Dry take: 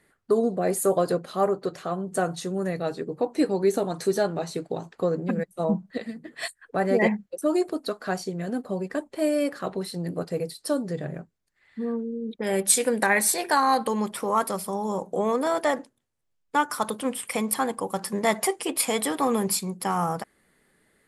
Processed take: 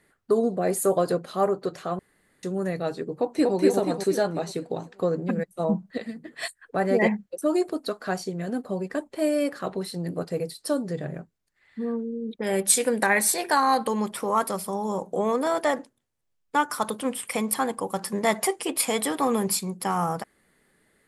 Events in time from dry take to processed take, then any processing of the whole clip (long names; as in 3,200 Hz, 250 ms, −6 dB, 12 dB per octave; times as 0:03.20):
0:01.99–0:02.43: fill with room tone
0:03.14–0:03.55: delay throw 240 ms, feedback 50%, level −1 dB